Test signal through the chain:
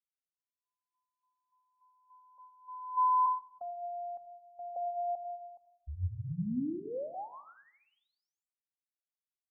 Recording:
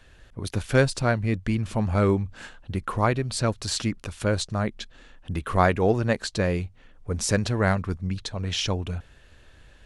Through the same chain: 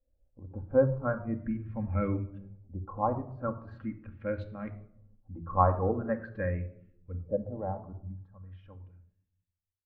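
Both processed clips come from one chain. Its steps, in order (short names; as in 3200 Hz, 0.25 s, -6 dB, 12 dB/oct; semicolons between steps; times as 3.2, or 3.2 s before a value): ending faded out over 3.15 s; LFO low-pass saw up 0.42 Hz 560–3000 Hz; resonator 85 Hz, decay 1.4 s, harmonics all, mix 40%; shoebox room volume 3600 m³, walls furnished, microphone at 2.2 m; spectral expander 1.5:1; gain -4.5 dB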